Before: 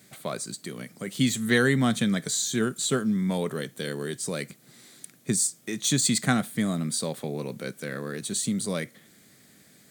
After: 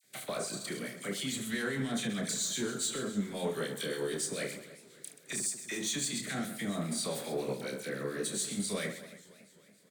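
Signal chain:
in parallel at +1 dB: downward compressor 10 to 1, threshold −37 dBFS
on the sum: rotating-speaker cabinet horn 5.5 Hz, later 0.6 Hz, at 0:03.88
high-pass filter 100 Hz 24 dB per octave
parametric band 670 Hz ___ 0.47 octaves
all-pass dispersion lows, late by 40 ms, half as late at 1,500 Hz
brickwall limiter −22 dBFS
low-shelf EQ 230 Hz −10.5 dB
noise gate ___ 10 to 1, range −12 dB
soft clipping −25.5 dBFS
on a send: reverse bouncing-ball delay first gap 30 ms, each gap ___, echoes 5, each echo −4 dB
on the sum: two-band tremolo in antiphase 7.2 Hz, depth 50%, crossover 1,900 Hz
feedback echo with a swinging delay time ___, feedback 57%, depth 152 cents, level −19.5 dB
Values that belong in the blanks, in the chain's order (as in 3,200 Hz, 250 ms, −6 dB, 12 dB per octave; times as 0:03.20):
+2 dB, −45 dBFS, 1.4×, 276 ms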